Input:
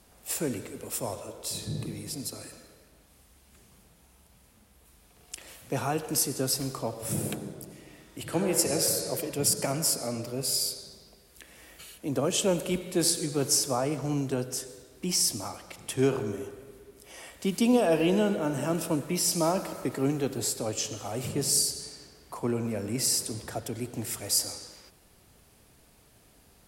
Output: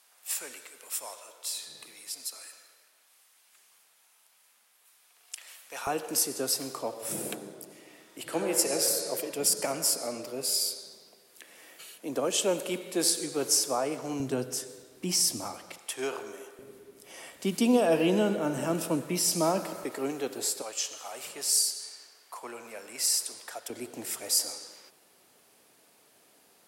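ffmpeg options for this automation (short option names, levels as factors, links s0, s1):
-af "asetnsamples=n=441:p=0,asendcmd='5.87 highpass f 320;14.2 highpass f 150;15.78 highpass f 620;16.59 highpass f 160;19.84 highpass f 390;20.62 highpass f 840;23.7 highpass f 330',highpass=1100"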